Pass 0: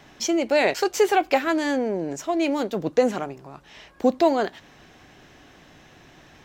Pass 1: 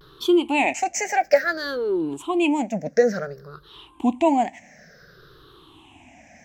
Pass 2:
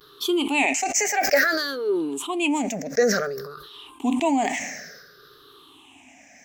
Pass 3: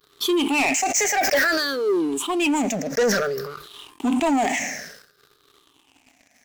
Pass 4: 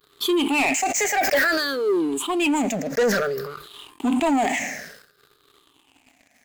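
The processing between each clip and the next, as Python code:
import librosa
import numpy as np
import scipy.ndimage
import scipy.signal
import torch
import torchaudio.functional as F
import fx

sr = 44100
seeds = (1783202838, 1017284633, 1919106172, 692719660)

y1 = fx.spec_ripple(x, sr, per_octave=0.61, drift_hz=-0.56, depth_db=24)
y1 = fx.vibrato(y1, sr, rate_hz=0.93, depth_cents=81.0)
y1 = y1 * 10.0 ** (-5.0 / 20.0)
y2 = fx.tilt_eq(y1, sr, slope=3.0)
y2 = fx.small_body(y2, sr, hz=(270.0, 410.0, 1200.0), ring_ms=75, db=10)
y2 = fx.sustainer(y2, sr, db_per_s=44.0)
y2 = y2 * 10.0 ** (-3.0 / 20.0)
y3 = fx.leveller(y2, sr, passes=3)
y3 = y3 * 10.0 ** (-7.0 / 20.0)
y4 = fx.peak_eq(y3, sr, hz=5700.0, db=-8.0, octaves=0.28)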